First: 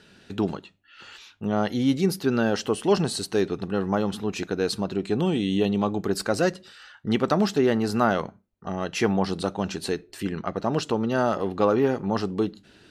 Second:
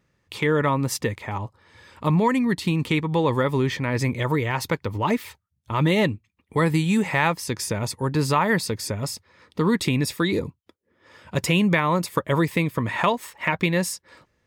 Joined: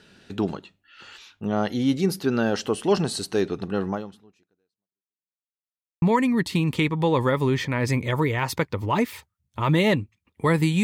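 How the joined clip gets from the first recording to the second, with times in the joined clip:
first
3.88–5.35 fade out exponential
5.35–6.02 mute
6.02 switch to second from 2.14 s

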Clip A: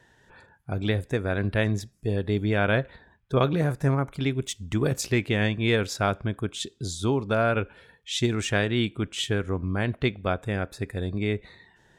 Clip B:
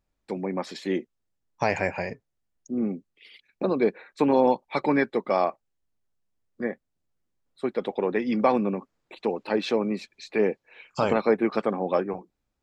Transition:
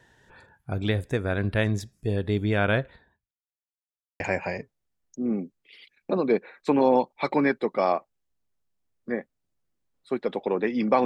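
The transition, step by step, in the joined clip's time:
clip A
2.71–3.31 fade out linear
3.31–4.2 mute
4.2 switch to clip B from 1.72 s

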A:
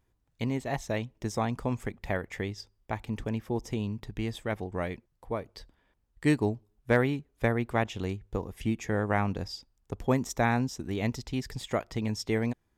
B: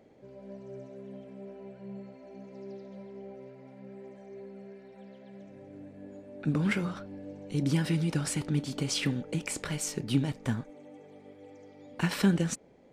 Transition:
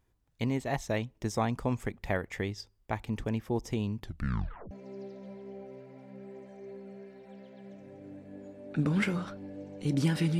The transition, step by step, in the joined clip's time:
A
3.99 tape stop 0.72 s
4.71 switch to B from 2.4 s

